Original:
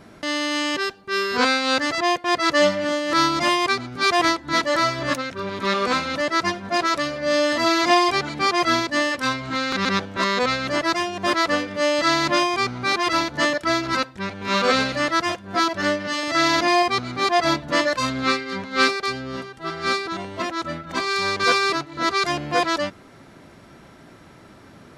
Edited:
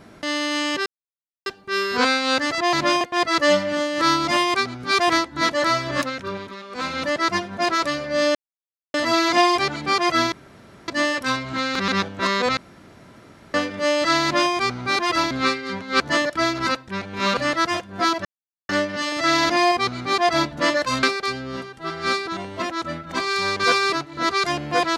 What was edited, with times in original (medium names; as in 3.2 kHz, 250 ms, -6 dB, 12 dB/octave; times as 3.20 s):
0.86 s: insert silence 0.60 s
5.42–6.09 s: dip -16.5 dB, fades 0.26 s
7.47 s: insert silence 0.59 s
8.85 s: insert room tone 0.56 s
10.54–11.51 s: room tone
12.20–12.48 s: copy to 2.13 s
14.65–14.92 s: delete
15.80 s: insert silence 0.44 s
18.14–18.83 s: move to 13.28 s